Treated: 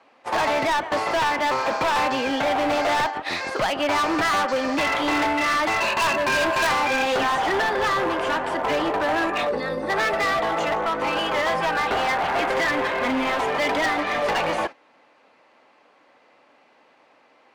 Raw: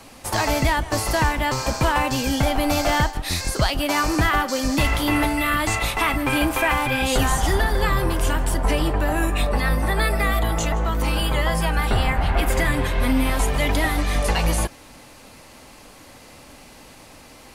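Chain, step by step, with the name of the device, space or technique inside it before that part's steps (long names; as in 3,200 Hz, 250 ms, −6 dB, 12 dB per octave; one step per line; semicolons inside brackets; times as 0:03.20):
0:05.80–0:06.67: EQ curve with evenly spaced ripples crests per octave 1.4, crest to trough 16 dB
0:09.49–0:09.90: gain on a spectral selection 590–3,400 Hz −11 dB
walkie-talkie (band-pass filter 430–2,300 Hz; hard clipping −25.5 dBFS, distortion −7 dB; noise gate −36 dBFS, range −14 dB)
level +6.5 dB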